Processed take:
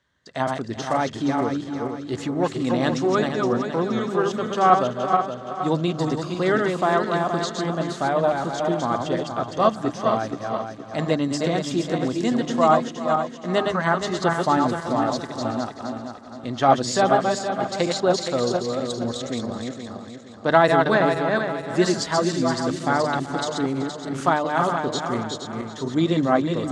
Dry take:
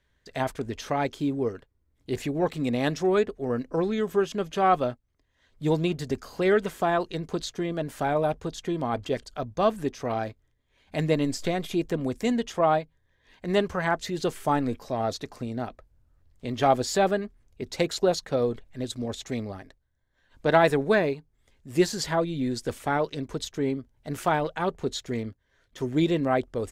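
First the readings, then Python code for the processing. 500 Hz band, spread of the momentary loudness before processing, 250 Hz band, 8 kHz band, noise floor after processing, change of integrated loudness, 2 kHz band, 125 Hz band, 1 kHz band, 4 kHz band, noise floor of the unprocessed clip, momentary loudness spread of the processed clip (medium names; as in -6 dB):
+4.0 dB, 11 LU, +5.0 dB, +5.0 dB, -38 dBFS, +4.5 dB, +5.5 dB, +3.5 dB, +7.0 dB, +5.5 dB, -71 dBFS, 10 LU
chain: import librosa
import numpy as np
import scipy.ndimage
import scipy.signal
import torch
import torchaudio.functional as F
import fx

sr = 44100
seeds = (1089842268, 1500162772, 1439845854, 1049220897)

p1 = fx.reverse_delay_fb(x, sr, ms=235, feedback_pct=61, wet_db=-3.5)
p2 = fx.cabinet(p1, sr, low_hz=110.0, low_slope=12, high_hz=8200.0, hz=(430.0, 1200.0, 2400.0), db=(-6, 5, -7))
p3 = fx.hum_notches(p2, sr, base_hz=50, count=4)
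p4 = p3 + fx.echo_feedback(p3, sr, ms=379, feedback_pct=28, wet_db=-15.5, dry=0)
y = F.gain(torch.from_numpy(p4), 3.5).numpy()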